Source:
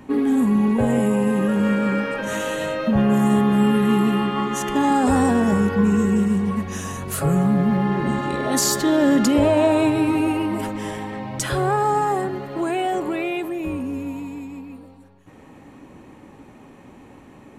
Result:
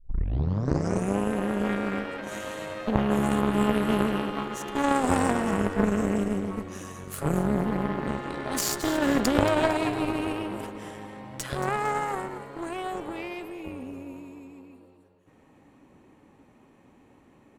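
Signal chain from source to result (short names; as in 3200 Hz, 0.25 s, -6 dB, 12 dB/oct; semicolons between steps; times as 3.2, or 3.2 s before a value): tape start at the beginning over 1.18 s; added harmonics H 2 -12 dB, 3 -10 dB, 5 -28 dB, 6 -38 dB, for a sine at -6.5 dBFS; frequency-shifting echo 0.227 s, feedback 37%, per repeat +83 Hz, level -12.5 dB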